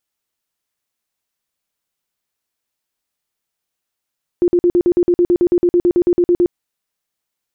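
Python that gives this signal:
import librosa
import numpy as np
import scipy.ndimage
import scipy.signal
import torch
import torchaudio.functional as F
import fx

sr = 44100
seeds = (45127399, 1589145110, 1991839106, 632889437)

y = fx.tone_burst(sr, hz=351.0, cycles=21, every_s=0.11, bursts=19, level_db=-9.0)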